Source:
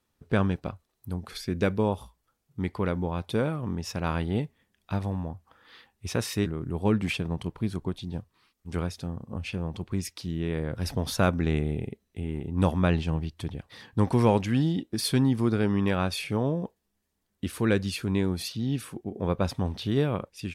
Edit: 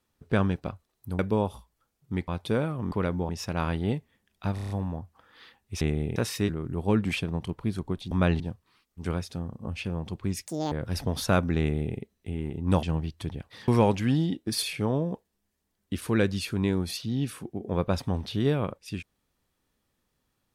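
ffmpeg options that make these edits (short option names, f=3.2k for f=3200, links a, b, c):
-filter_complex "[0:a]asplit=19[a][b][c][d][e][f][g][h][i][j][k][l][m][n][o][p][q][r][s];[a]atrim=end=1.192[t];[b]atrim=start=1.658:end=2.752[u];[c]atrim=start=3.118:end=3.762[v];[d]atrim=start=2.748:end=3.122[w];[e]atrim=start=3.758:end=5.052[x];[f]atrim=start=5.018:end=5.052[y];[g]atrim=start=5.018:end=5.052[z];[h]atrim=start=5.018:end=5.052[aa];[i]atrim=start=5.018:end=5.052[ab];[j]atrim=start=5.018:end=6.132[ac];[k]atrim=start=11.498:end=11.852[ad];[l]atrim=start=6.128:end=8.082[ae];[m]atrim=start=12.728:end=13.022[af];[n]atrim=start=8.078:end=10.144[ag];[o]atrim=start=10.14:end=10.62,asetpts=PTS-STARTPTS,asetrate=82026,aresample=44100[ah];[p]atrim=start=10.616:end=12.732[ai];[q]atrim=start=13.018:end=13.872[aj];[r]atrim=start=14.138:end=15.092[ak];[s]atrim=start=16.138[al];[t][u]acrossfade=d=0.004:c1=hsin:c2=hsin[am];[am][v]acrossfade=d=0.004:c1=hsin:c2=hsin[an];[an][w]acrossfade=d=0.004:c1=hsin:c2=hsin[ao];[ao][x]acrossfade=d=0.004:c1=hsin:c2=hsin[ap];[ap][y]acrossfade=d=0.004:c1=hsin:c2=hsin[aq];[aq][z]acrossfade=d=0.004:c1=hsin:c2=hsin[ar];[ar][aa]acrossfade=d=0.004:c1=hsin:c2=hsin[as];[as][ab]acrossfade=d=0.004:c1=hsin:c2=hsin[at];[at][ac]acrossfade=d=0.004:c1=hsin:c2=hsin[au];[au][ad]acrossfade=d=0.004:c1=hsin:c2=hsin[av];[av][ae]acrossfade=d=0.004:c1=hsin:c2=hsin[aw];[aw][af]acrossfade=d=0.004:c1=hsin:c2=hsin[ax];[ax][ag]acrossfade=d=0.004:c1=hsin:c2=hsin[ay];[ay][ah]acrossfade=d=0.004:c1=hsin:c2=hsin[az];[az][ai]acrossfade=d=0.004:c1=hsin:c2=hsin[ba];[ba][aj]acrossfade=d=0.004:c1=hsin:c2=hsin[bb];[bb][ak]acrossfade=d=0.004:c1=hsin:c2=hsin[bc];[bc][al]acrossfade=d=0.004:c1=hsin:c2=hsin"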